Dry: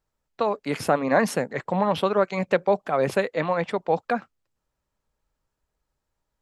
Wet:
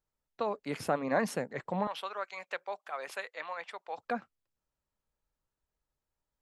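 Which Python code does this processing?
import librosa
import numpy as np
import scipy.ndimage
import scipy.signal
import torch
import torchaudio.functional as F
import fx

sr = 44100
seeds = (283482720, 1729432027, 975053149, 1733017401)

y = fx.highpass(x, sr, hz=1000.0, slope=12, at=(1.87, 3.98))
y = y * 10.0 ** (-9.0 / 20.0)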